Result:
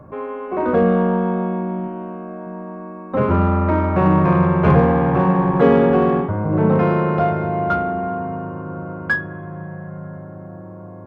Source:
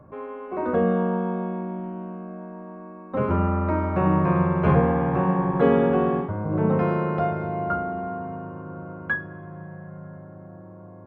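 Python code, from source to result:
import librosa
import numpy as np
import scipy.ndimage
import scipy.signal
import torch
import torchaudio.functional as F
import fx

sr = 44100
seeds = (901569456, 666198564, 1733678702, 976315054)

p1 = fx.peak_eq(x, sr, hz=160.0, db=-9.0, octaves=0.58, at=(1.87, 2.47))
p2 = 10.0 ** (-24.0 / 20.0) * np.tanh(p1 / 10.0 ** (-24.0 / 20.0))
p3 = p1 + (p2 * librosa.db_to_amplitude(-6.0))
y = p3 * librosa.db_to_amplitude(4.0)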